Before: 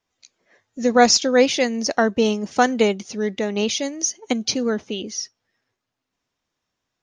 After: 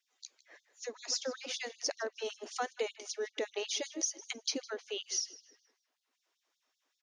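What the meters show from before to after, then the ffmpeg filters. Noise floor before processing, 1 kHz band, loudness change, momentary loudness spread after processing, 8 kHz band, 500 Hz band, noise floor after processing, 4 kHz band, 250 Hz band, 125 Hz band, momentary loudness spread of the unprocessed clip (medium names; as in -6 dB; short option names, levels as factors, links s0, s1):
-81 dBFS, -22.0 dB, -17.0 dB, 10 LU, -12.0 dB, -19.0 dB, -84 dBFS, -13.0 dB, -26.5 dB, no reading, 12 LU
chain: -filter_complex "[0:a]acompressor=threshold=0.0282:ratio=6,asplit=2[s0][s1];[s1]adelay=156,lowpass=f=4700:p=1,volume=0.168,asplit=2[s2][s3];[s3]adelay=156,lowpass=f=4700:p=1,volume=0.44,asplit=2[s4][s5];[s5]adelay=156,lowpass=f=4700:p=1,volume=0.44,asplit=2[s6][s7];[s7]adelay=156,lowpass=f=4700:p=1,volume=0.44[s8];[s0][s2][s4][s6][s8]amix=inputs=5:normalize=0,afftfilt=real='re*gte(b*sr/1024,240*pow(3400/240,0.5+0.5*sin(2*PI*5.2*pts/sr)))':imag='im*gte(b*sr/1024,240*pow(3400/240,0.5+0.5*sin(2*PI*5.2*pts/sr)))':win_size=1024:overlap=0.75"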